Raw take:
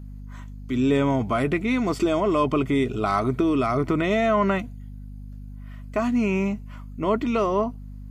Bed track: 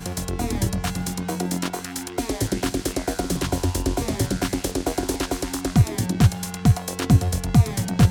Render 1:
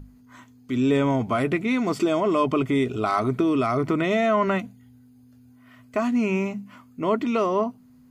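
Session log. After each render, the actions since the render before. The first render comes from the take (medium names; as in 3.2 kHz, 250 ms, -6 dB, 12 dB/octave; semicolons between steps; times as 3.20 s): hum notches 50/100/150/200 Hz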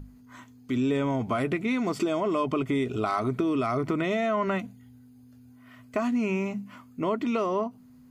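compression 2.5:1, threshold -25 dBFS, peak gain reduction 6 dB; endings held to a fixed fall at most 360 dB/s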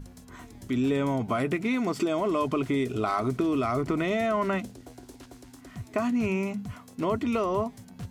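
add bed track -23.5 dB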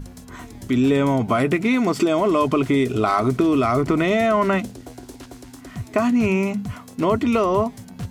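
trim +8 dB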